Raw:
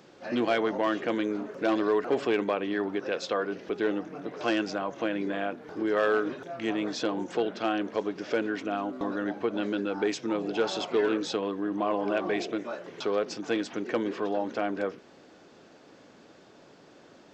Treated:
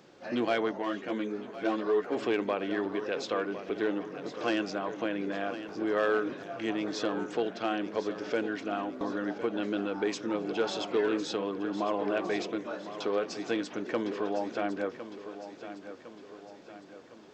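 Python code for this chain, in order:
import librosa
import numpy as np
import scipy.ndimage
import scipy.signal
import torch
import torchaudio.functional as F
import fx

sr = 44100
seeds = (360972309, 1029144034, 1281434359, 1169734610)

p1 = x + fx.echo_feedback(x, sr, ms=1057, feedback_pct=50, wet_db=-12, dry=0)
p2 = fx.ensemble(p1, sr, at=(0.71, 2.15), fade=0.02)
y = p2 * librosa.db_to_amplitude(-2.5)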